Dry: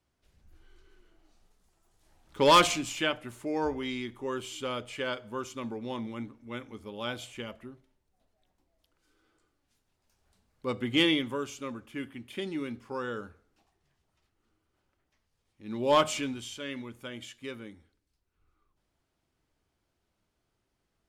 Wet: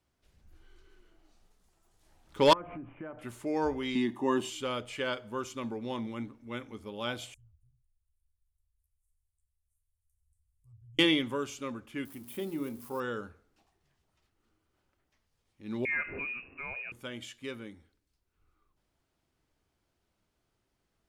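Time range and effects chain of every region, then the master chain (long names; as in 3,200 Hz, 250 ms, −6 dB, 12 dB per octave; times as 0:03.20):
0:02.53–0:03.19: Gaussian smoothing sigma 6.2 samples + downward compressor 8 to 1, threshold −38 dBFS
0:03.95–0:04.50: high-pass filter 160 Hz + parametric band 370 Hz +11.5 dB 2 octaves + comb filter 1.1 ms, depth 78%
0:07.34–0:10.99: inverse Chebyshev band-stop filter 220–4,100 Hz, stop band 50 dB + treble cut that deepens with the level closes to 2,200 Hz, closed at −57 dBFS
0:12.05–0:13.00: spike at every zero crossing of −38.5 dBFS + flat-topped bell 3,500 Hz −8.5 dB 2.7 octaves + mains-hum notches 60/120/180/240/300/360/420/480/540/600 Hz
0:15.85–0:16.92: voice inversion scrambler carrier 2,700 Hz + downward compressor 2 to 1, threshold −36 dBFS
whole clip: no processing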